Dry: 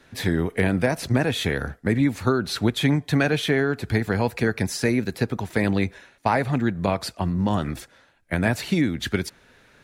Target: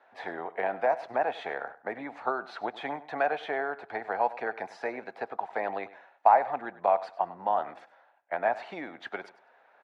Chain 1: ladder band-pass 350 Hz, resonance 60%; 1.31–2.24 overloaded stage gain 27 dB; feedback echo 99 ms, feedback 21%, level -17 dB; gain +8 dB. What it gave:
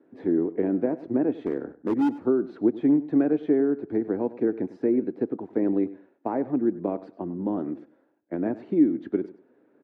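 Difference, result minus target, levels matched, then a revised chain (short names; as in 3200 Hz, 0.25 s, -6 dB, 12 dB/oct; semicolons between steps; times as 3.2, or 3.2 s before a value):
250 Hz band +17.0 dB
ladder band-pass 840 Hz, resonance 60%; 1.31–2.24 overloaded stage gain 27 dB; feedback echo 99 ms, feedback 21%, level -17 dB; gain +8 dB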